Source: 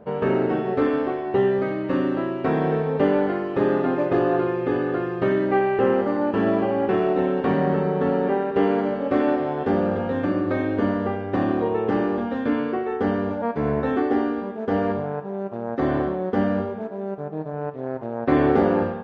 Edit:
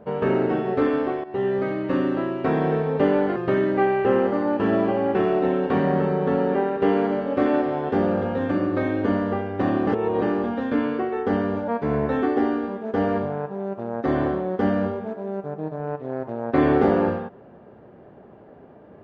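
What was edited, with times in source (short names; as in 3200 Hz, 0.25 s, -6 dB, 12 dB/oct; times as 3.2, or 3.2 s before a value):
1.24–1.79 fade in equal-power, from -14 dB
3.36–5.1 cut
11.61–11.96 reverse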